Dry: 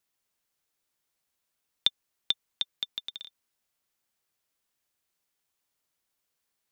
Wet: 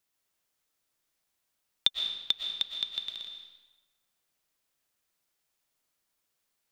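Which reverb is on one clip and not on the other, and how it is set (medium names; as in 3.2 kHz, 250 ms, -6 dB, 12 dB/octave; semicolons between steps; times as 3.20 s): algorithmic reverb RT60 1.1 s, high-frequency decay 0.9×, pre-delay 80 ms, DRR 3.5 dB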